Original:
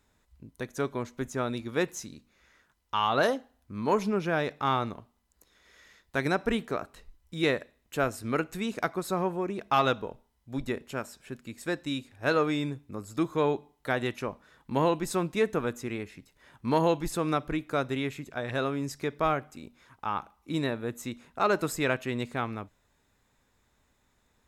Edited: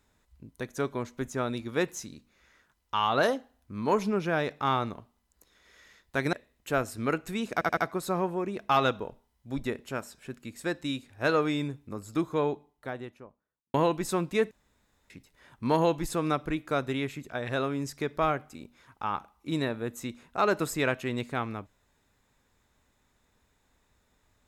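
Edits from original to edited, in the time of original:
0:06.33–0:07.59: remove
0:08.79: stutter 0.08 s, 4 plays
0:13.00–0:14.76: fade out and dull
0:15.53–0:16.12: fill with room tone

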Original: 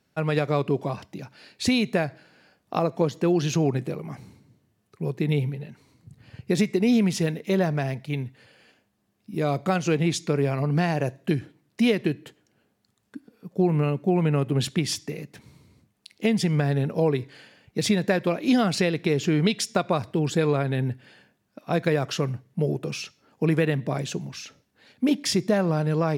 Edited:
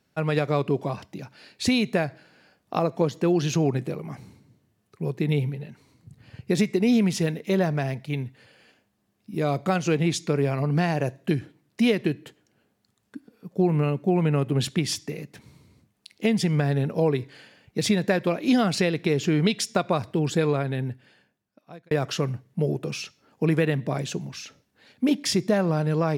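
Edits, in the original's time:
0:20.38–0:21.91: fade out

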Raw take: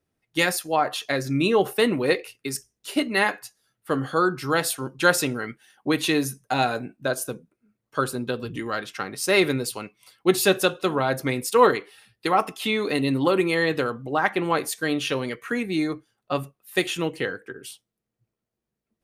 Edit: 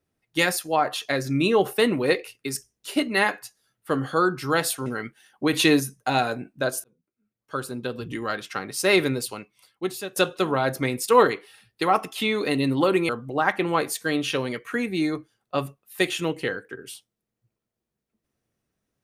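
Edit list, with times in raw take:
0:04.86–0:05.30: remove
0:05.97–0:06.24: clip gain +4 dB
0:07.28–0:08.65: fade in
0:09.60–0:10.60: fade out, to −21.5 dB
0:13.53–0:13.86: remove

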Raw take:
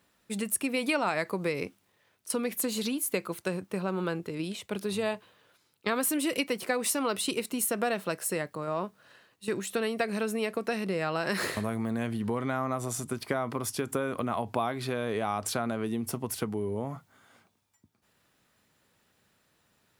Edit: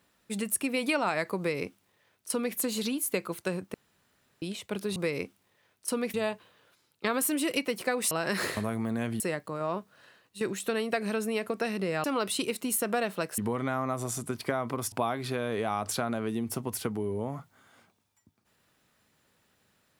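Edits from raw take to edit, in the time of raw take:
0:01.38–0:02.56: duplicate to 0:04.96
0:03.74–0:04.42: fill with room tone
0:06.93–0:08.27: swap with 0:11.11–0:12.20
0:13.74–0:14.49: remove

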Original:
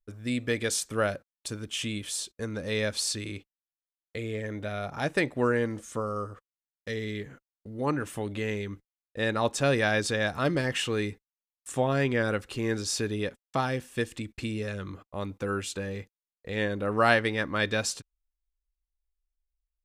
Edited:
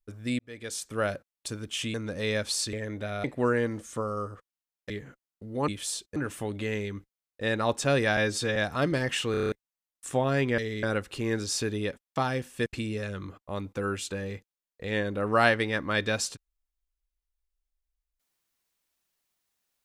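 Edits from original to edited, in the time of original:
0:00.39–0:01.15: fade in
0:01.94–0:02.42: move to 0:07.92
0:03.21–0:04.35: remove
0:04.86–0:05.23: remove
0:06.89–0:07.14: move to 0:12.21
0:09.93–0:10.19: time-stretch 1.5×
0:10.94: stutter in place 0.03 s, 7 plays
0:14.04–0:14.31: remove

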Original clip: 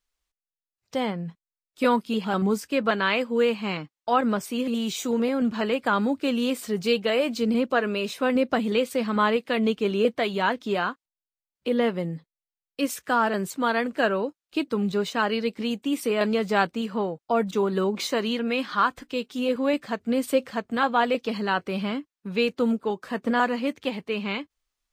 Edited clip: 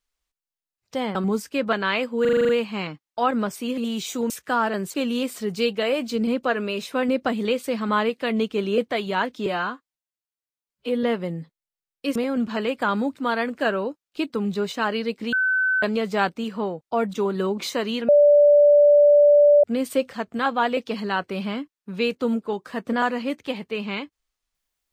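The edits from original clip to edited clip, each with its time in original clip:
0:01.15–0:02.33: remove
0:03.39: stutter 0.04 s, 8 plays
0:05.20–0:06.21: swap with 0:12.90–0:13.54
0:10.73–0:11.78: time-stretch 1.5×
0:15.70–0:16.20: beep over 1,520 Hz −18 dBFS
0:18.46–0:20.01: beep over 584 Hz −10.5 dBFS

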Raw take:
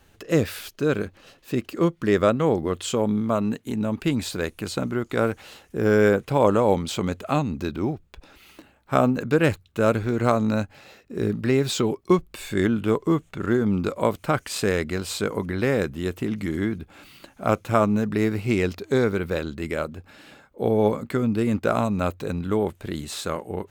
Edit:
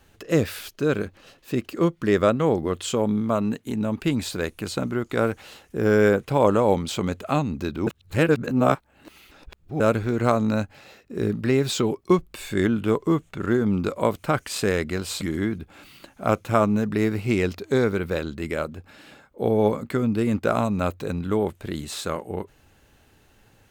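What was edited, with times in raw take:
0:07.87–0:09.80: reverse
0:15.21–0:16.41: remove

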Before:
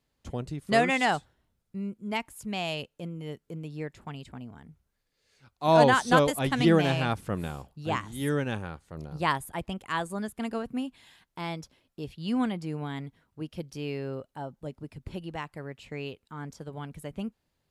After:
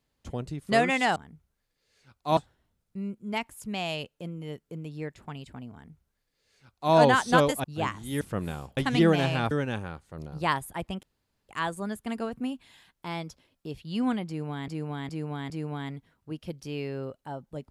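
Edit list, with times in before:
0:04.52–0:05.73: duplicate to 0:01.16
0:06.43–0:07.17: swap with 0:07.73–0:08.30
0:09.82: splice in room tone 0.46 s
0:12.60–0:13.01: repeat, 4 plays

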